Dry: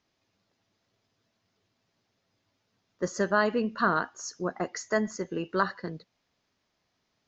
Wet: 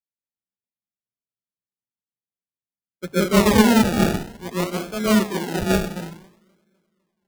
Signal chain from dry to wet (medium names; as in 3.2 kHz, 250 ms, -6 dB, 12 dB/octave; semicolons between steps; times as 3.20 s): tilt shelf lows +9.5 dB, about 860 Hz; hum notches 50/100/150 Hz; filtered feedback delay 252 ms, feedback 74%, low-pass 3.2 kHz, level -18.5 dB; plate-style reverb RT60 0.59 s, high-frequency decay 0.85×, pre-delay 105 ms, DRR -5.5 dB; decimation with a swept rate 33×, swing 60% 0.56 Hz; three bands expanded up and down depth 100%; trim -2 dB